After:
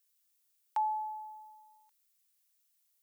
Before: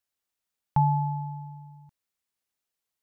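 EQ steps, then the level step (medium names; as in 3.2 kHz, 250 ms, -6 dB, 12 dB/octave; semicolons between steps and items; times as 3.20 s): high-pass 490 Hz 24 dB/octave; tilt EQ +4.5 dB/octave; -4.5 dB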